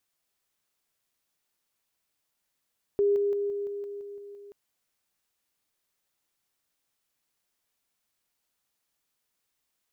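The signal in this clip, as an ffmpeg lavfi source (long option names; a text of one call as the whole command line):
ffmpeg -f lavfi -i "aevalsrc='pow(10,(-20-3*floor(t/0.17))/20)*sin(2*PI*405*t)':duration=1.53:sample_rate=44100" out.wav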